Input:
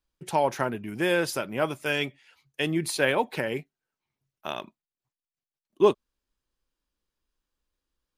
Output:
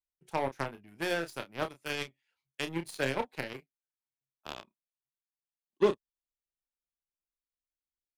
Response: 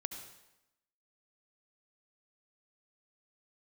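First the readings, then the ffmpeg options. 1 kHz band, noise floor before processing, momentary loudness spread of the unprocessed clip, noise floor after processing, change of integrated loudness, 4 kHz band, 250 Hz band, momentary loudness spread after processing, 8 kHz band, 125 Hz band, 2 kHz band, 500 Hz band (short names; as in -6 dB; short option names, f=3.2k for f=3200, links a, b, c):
-8.0 dB, under -85 dBFS, 13 LU, under -85 dBFS, -7.5 dB, -7.0 dB, -8.0 dB, 16 LU, -11.0 dB, -7.5 dB, -7.5 dB, -7.5 dB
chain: -filter_complex "[0:a]aeval=exprs='0.355*(cos(1*acos(clip(val(0)/0.355,-1,1)))-cos(1*PI/2))+0.0447*(cos(7*acos(clip(val(0)/0.355,-1,1)))-cos(7*PI/2))+0.00224*(cos(8*acos(clip(val(0)/0.355,-1,1)))-cos(8*PI/2))':c=same,acrossover=split=470[a][b];[b]acompressor=threshold=-26dB:ratio=6[c];[a][c]amix=inputs=2:normalize=0,asplit=2[d][e];[e]adelay=30,volume=-9dB[f];[d][f]amix=inputs=2:normalize=0,volume=-4dB"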